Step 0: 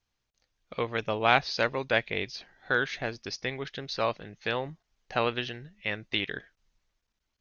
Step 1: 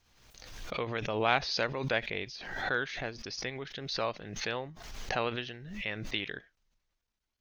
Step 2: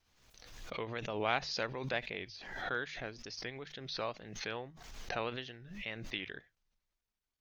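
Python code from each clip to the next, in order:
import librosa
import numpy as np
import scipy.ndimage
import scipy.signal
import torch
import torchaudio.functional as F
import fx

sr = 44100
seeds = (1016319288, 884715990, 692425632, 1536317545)

y1 = fx.pre_swell(x, sr, db_per_s=49.0)
y1 = y1 * librosa.db_to_amplitude(-5.5)
y2 = fx.wow_flutter(y1, sr, seeds[0], rate_hz=2.1, depth_cents=85.0)
y2 = fx.hum_notches(y2, sr, base_hz=50, count=3)
y2 = y2 * librosa.db_to_amplitude(-5.5)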